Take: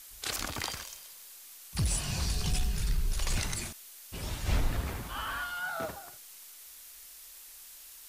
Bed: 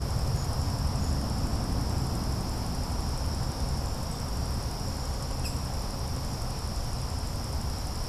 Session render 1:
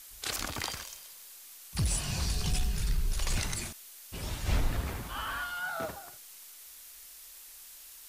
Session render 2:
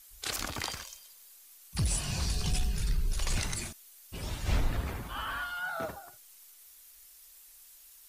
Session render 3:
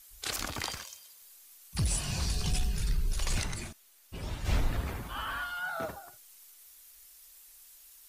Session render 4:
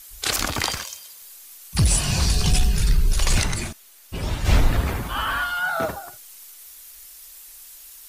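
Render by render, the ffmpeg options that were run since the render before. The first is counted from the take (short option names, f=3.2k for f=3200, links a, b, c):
-af anull
-af "afftdn=nr=8:nf=-51"
-filter_complex "[0:a]asettb=1/sr,asplit=3[a][b][c];[a]atrim=end=0.784[d];[b]atrim=start=0.78:end=1.22,asetpts=PTS-STARTPTS,afade=t=in:d=0.004:c=qsin,afade=t=out:st=0.436:d=0.004:c=qsin,highpass=91[e];[c]atrim=start=1.216[f];[d][e]acrossfade=d=0.004:c1=hsin:c2=qsin[g];[g][f]acrossfade=d=0.004:c1=qsin:c2=hsin,asettb=1/sr,asplit=3[h][i][j];[h]atrim=end=3.434[k];[i]atrim=start=3.43:end=4.45,asetpts=PTS-STARTPTS,afade=t=in:d=0.004:c=qsin,afade=t=out:st=1.016:d=0.004:c=qsin,highshelf=f=3.8k:g=-7.5[l];[j]atrim=start=4.446[m];[k][l]acrossfade=d=0.004:c1=hsin:c2=qsin[n];[n][m]acrossfade=d=0.004:c1=qsin:c2=hsin"
-af "volume=11.5dB"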